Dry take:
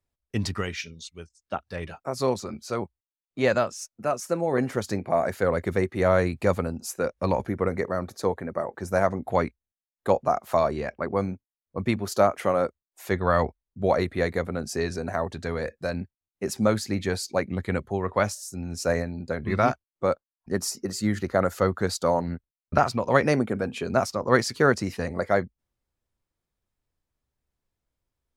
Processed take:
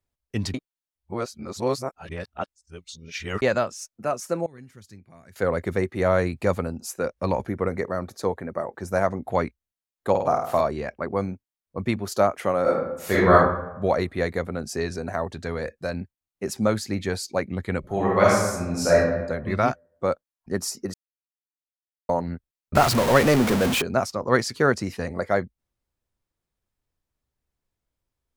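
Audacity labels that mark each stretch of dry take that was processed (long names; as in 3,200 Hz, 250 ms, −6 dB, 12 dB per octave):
0.540000	3.420000	reverse
4.460000	5.360000	guitar amp tone stack bass-middle-treble 6-0-2
10.100000	10.610000	flutter between parallel walls apart 8.8 metres, dies away in 0.67 s
12.620000	13.320000	thrown reverb, RT60 0.87 s, DRR −9 dB
17.800000	18.940000	thrown reverb, RT60 1.1 s, DRR −6.5 dB
20.940000	22.090000	silence
22.750000	23.820000	converter with a step at zero of −18.5 dBFS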